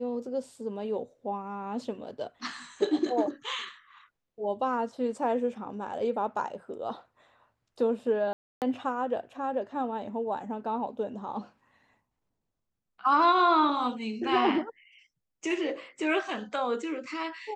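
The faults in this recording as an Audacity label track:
8.330000	8.620000	gap 0.288 s

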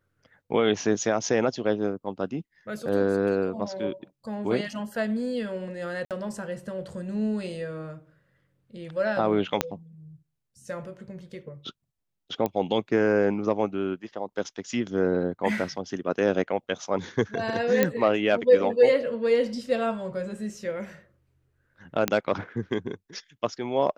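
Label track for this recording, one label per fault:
6.050000	6.110000	gap 57 ms
9.610000	9.610000	pop -6 dBFS
12.460000	12.460000	pop -14 dBFS
17.830000	17.830000	pop -7 dBFS
22.080000	22.080000	pop -7 dBFS

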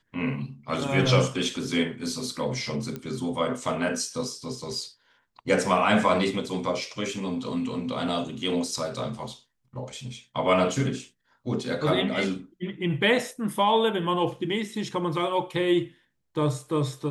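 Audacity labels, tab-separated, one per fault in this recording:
2.960000	2.960000	pop -20 dBFS

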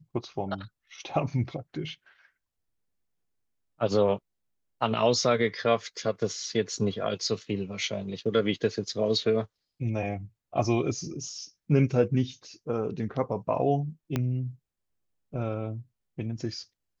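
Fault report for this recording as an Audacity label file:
14.160000	14.160000	pop -14 dBFS

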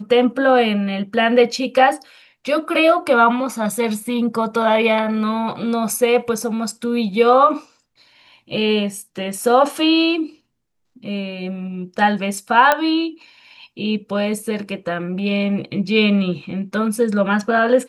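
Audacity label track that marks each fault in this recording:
12.720000	12.720000	pop -2 dBFS

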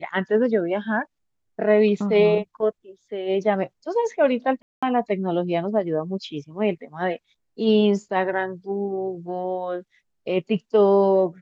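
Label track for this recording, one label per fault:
4.620000	4.830000	gap 0.205 s

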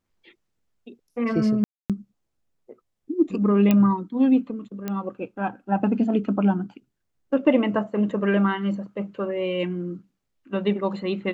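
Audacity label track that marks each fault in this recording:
1.640000	1.900000	gap 0.257 s
3.710000	3.710000	pop -8 dBFS
4.880000	4.880000	pop -15 dBFS

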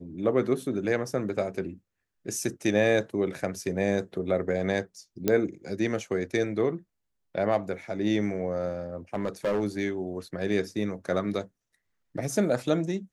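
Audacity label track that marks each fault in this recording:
5.280000	5.280000	pop -10 dBFS
9.140000	9.640000	clipped -22.5 dBFS

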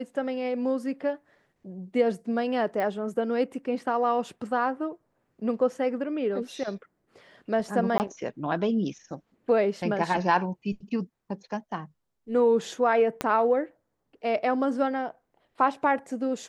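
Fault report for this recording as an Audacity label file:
2.800000	2.800000	pop -19 dBFS
7.980000	8.000000	gap 19 ms
13.210000	13.210000	pop -12 dBFS

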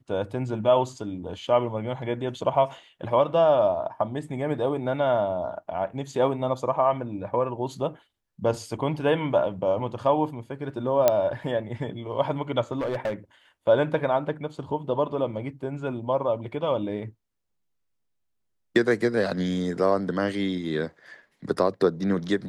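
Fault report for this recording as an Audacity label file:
11.080000	11.080000	pop -5 dBFS
12.720000	13.140000	clipped -23.5 dBFS

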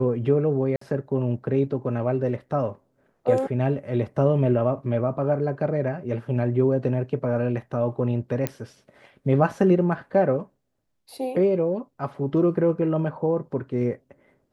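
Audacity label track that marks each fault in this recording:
0.760000	0.810000	gap 54 ms
8.470000	8.470000	pop -10 dBFS

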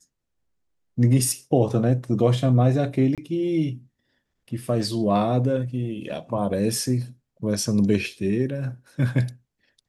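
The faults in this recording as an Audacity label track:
3.150000	3.180000	gap 27 ms

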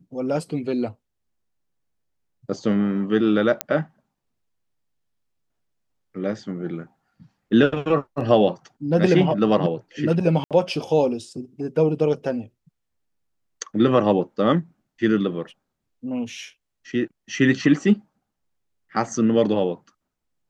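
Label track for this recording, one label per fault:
3.610000	3.610000	pop -4 dBFS
10.440000	10.510000	gap 67 ms

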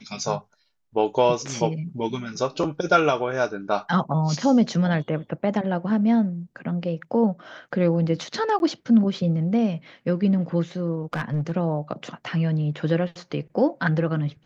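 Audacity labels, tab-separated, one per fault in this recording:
8.590000	8.600000	gap 11 ms
11.130000	11.520000	clipped -20.5 dBFS

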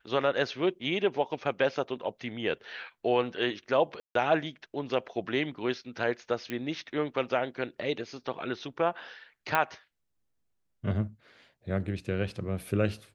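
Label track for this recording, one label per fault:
4.000000	4.150000	gap 0.153 s
6.500000	6.500000	pop -20 dBFS
9.550000	9.550000	pop -12 dBFS

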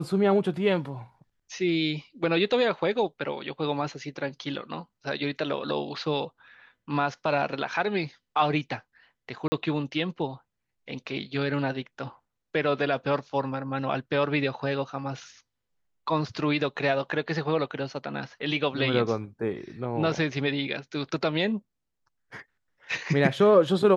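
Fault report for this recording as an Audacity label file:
9.480000	9.520000	gap 40 ms

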